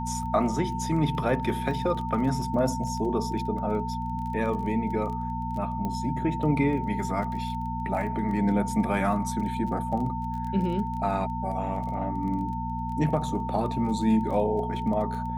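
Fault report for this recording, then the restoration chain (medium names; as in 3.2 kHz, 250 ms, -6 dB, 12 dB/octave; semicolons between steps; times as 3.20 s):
crackle 21 per s -35 dBFS
hum 60 Hz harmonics 4 -33 dBFS
whine 900 Hz -32 dBFS
5.85 s: pop -19 dBFS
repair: de-click; de-hum 60 Hz, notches 4; band-stop 900 Hz, Q 30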